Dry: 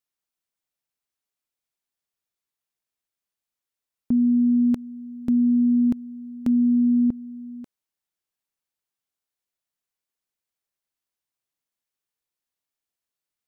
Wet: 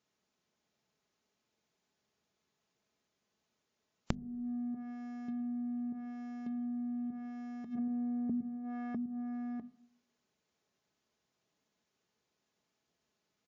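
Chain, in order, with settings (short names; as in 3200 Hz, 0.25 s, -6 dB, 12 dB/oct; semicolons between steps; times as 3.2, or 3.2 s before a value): in parallel at -7 dB: fuzz box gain 51 dB, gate -58 dBFS; on the sum: HPF 99 Hz 12 dB/oct; feedback echo 0.651 s, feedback 37%, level -16.5 dB; flipped gate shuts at -19 dBFS, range -36 dB; tilt shelf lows +6.5 dB, about 660 Hz; notches 50/100/150/200/250 Hz; comb 4.7 ms, depth 35%; on a send at -16 dB: reverb RT60 0.80 s, pre-delay 6 ms; on the sum: treble ducked by the level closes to 390 Hz, closed at -43 dBFS; compressor 2.5:1, threshold -50 dBFS, peak gain reduction 16.5 dB; gain +12.5 dB; WMA 128 kbps 16000 Hz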